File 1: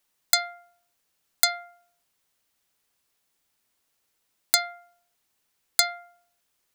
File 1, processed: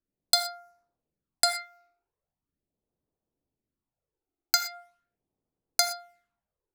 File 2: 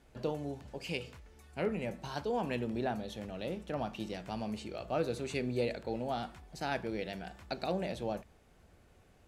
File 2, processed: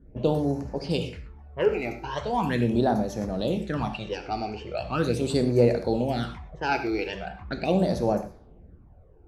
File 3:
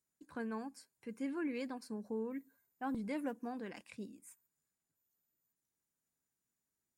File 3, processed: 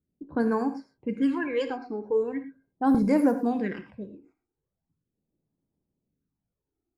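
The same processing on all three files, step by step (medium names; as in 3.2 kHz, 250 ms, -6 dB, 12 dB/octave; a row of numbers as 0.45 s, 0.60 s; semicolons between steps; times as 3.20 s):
phase shifter stages 12, 0.4 Hz, lowest notch 170–3300 Hz; level-controlled noise filter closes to 470 Hz, open at -36 dBFS; gated-style reverb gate 140 ms flat, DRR 8.5 dB; normalise loudness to -27 LUFS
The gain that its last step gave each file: +1.5 dB, +12.0 dB, +16.0 dB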